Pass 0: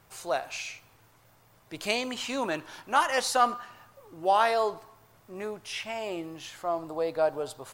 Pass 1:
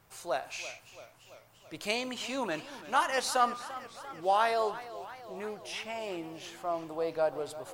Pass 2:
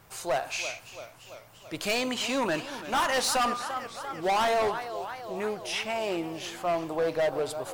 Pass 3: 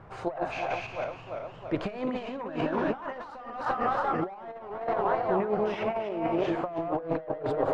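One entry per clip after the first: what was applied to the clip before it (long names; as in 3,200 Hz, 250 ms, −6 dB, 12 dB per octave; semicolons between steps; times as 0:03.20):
feedback echo with a swinging delay time 339 ms, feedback 66%, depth 106 cents, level −15.5 dB; level −3.5 dB
hard clipping −30 dBFS, distortion −6 dB; level +7.5 dB
feedback delay that plays each chunk backwards 174 ms, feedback 40%, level −3 dB; compressor whose output falls as the input rises −32 dBFS, ratio −0.5; low-pass filter 1,300 Hz 12 dB per octave; level +4 dB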